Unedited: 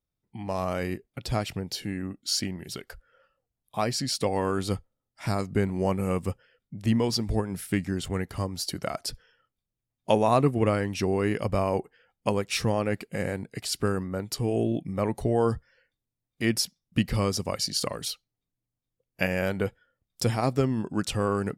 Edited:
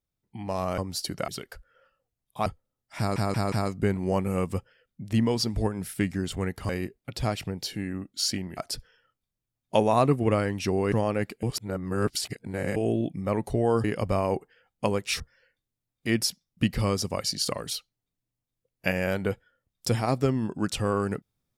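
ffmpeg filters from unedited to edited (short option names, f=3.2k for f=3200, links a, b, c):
-filter_complex "[0:a]asplit=14[a][b][c][d][e][f][g][h][i][j][k][l][m][n];[a]atrim=end=0.782[o];[b]atrim=start=8.418:end=8.922[p];[c]atrim=start=2.658:end=3.842[q];[d]atrim=start=4.728:end=5.432[r];[e]atrim=start=5.248:end=5.432[s];[f]atrim=start=5.248:end=5.432[t];[g]atrim=start=5.248:end=8.422[u];[h]atrim=start=0.778:end=2.662[v];[i]atrim=start=8.918:end=11.272[w];[j]atrim=start=12.628:end=13.142[x];[k]atrim=start=13.138:end=14.472,asetpts=PTS-STARTPTS,areverse[y];[l]atrim=start=14.468:end=15.552[z];[m]atrim=start=11.268:end=12.632[aa];[n]atrim=start=15.548[ab];[o][p]acrossfade=d=0.004:c1=hsin:c2=hsin[ac];[ac][q]acrossfade=d=0.004:c1=hsin:c2=hsin[ad];[ad][r]acrossfade=d=0.004:c1=hsin:c2=hsin[ae];[ae][s]acrossfade=d=0.004:c1=hsin:c2=hsin[af];[af][t]acrossfade=d=0.004:c1=hsin:c2=hsin[ag];[ag][u]acrossfade=d=0.004:c1=hsin:c2=hsin[ah];[ah][v]acrossfade=d=0.004:c1=hsin:c2=hsin[ai];[ai][w]acrossfade=d=0.004:c1=hsin:c2=hsin[aj];[aj][x]acrossfade=d=0.004:c1=hsin:c2=hsin[ak];[ak][y]acrossfade=d=0.004:c1=hsin:c2=hsin[al];[al][z]acrossfade=d=0.004:c1=hsin:c2=hsin[am];[am][aa]acrossfade=d=0.004:c1=hsin:c2=hsin[an];[an][ab]acrossfade=d=0.004:c1=hsin:c2=hsin"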